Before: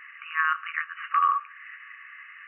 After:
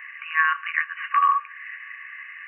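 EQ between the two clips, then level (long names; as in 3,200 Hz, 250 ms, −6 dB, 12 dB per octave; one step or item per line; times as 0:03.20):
parametric band 1,200 Hz +8 dB 1.1 octaves
phaser with its sweep stopped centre 1,300 Hz, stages 6
+4.5 dB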